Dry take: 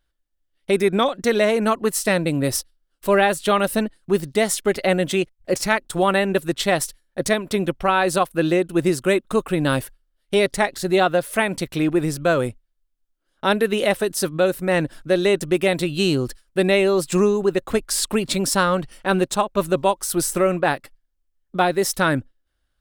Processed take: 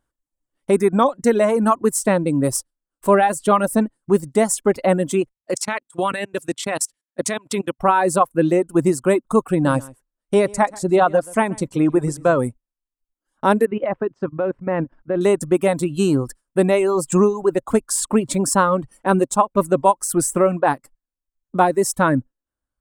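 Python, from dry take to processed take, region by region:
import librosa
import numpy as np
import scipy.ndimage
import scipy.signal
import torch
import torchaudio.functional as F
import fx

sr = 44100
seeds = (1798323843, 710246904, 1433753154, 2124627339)

y = fx.chain(x, sr, fx.weighting(curve='D'),
    fx.level_steps(step_db=22), at=(5.37, 7.79))
y = fx.chain(y, sr, fx.lowpass(hz=9600.0, slope=12),
    fx.echo_single(ms=130, db=-12.0), at=(9.5, 12.38))
y = fx.chain(y, sr, fx.lowpass(hz=2600.0, slope=24),
    fx.level_steps(step_db=11), at=(13.65, 15.21))
y = fx.dereverb_blind(y, sr, rt60_s=0.95)
y = fx.graphic_eq(y, sr, hz=(125, 250, 500, 1000, 4000, 8000), db=(9, 10, 5, 12, -7, 12))
y = F.gain(torch.from_numpy(y), -6.5).numpy()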